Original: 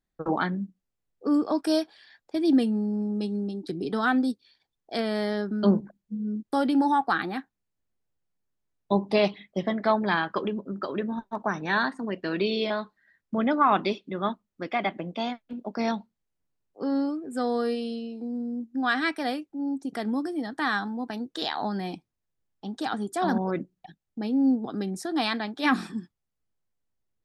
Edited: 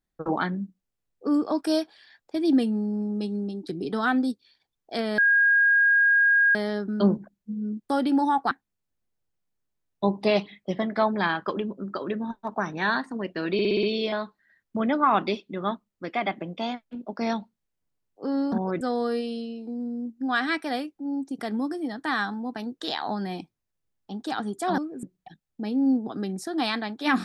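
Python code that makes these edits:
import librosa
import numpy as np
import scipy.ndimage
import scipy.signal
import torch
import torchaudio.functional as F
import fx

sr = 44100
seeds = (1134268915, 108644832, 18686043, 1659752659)

y = fx.edit(x, sr, fx.insert_tone(at_s=5.18, length_s=1.37, hz=1630.0, db=-16.0),
    fx.cut(start_s=7.14, length_s=0.25),
    fx.stutter(start_s=12.41, slice_s=0.06, count=6),
    fx.swap(start_s=17.1, length_s=0.25, other_s=23.32, other_length_s=0.29), tone=tone)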